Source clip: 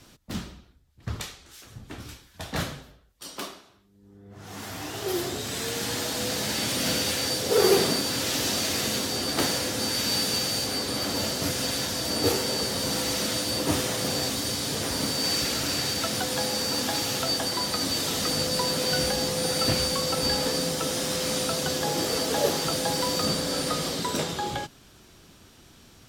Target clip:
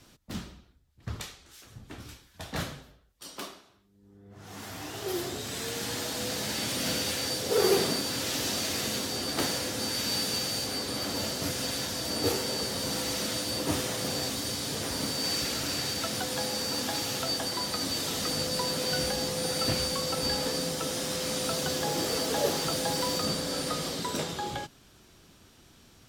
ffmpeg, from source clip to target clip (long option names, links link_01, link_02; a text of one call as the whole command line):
ffmpeg -i in.wav -filter_complex "[0:a]asettb=1/sr,asplit=3[link_01][link_02][link_03];[link_01]atrim=end=21.444[link_04];[link_02]atrim=start=21.44:end=23.18,asetpts=PTS-STARTPTS,afade=type=in:duration=0.004:curve=qsin,afade=type=out:start_time=1.736:duration=0.004:curve=qsin,aeval=exprs='val(0)+0.5*0.0158*sgn(val(0))':channel_layout=same[link_05];[link_03]atrim=start=23.176[link_06];[link_04][link_05]acrossfade=duration=0.004:curve1=hsin:curve2=qsin[link_07];[link_07][link_06]acrossfade=duration=0.004:curve1=qsin:curve2=hsin,volume=-4dB" out.wav